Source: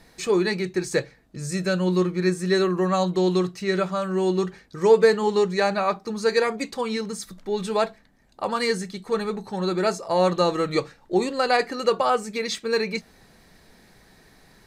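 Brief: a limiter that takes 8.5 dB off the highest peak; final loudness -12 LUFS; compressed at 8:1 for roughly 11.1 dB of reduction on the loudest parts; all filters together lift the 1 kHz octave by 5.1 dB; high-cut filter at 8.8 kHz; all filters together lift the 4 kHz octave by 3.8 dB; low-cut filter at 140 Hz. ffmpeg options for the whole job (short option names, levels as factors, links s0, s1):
-af "highpass=140,lowpass=8800,equalizer=f=1000:t=o:g=6.5,equalizer=f=4000:t=o:g=4,acompressor=threshold=0.0891:ratio=8,volume=7.08,alimiter=limit=0.794:level=0:latency=1"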